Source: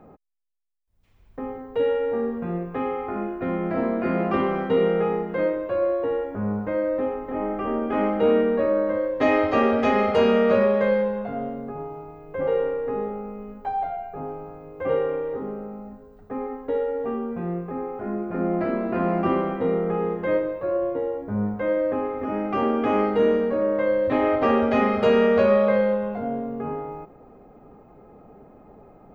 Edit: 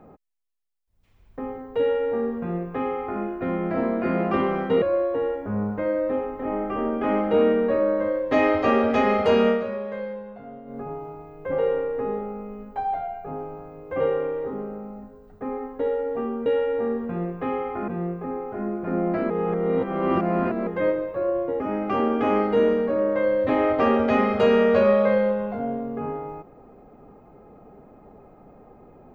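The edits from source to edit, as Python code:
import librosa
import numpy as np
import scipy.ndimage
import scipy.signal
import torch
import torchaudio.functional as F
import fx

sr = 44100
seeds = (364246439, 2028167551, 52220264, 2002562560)

y = fx.edit(x, sr, fx.duplicate(start_s=1.79, length_s=1.42, to_s=17.35),
    fx.cut(start_s=4.82, length_s=0.89),
    fx.fade_down_up(start_s=10.38, length_s=1.3, db=-11.0, fade_s=0.14),
    fx.reverse_span(start_s=18.77, length_s=1.37),
    fx.cut(start_s=21.07, length_s=1.16), tone=tone)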